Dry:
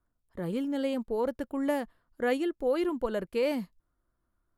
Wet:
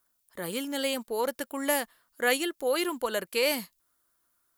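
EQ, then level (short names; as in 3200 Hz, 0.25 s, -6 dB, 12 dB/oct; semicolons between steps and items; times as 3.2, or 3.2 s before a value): tilt +4.5 dB/oct; +4.5 dB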